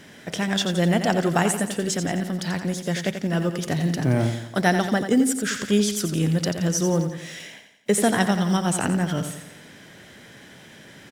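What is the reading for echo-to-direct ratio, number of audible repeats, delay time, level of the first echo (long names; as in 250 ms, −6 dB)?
−7.5 dB, 5, 87 ms, −8.5 dB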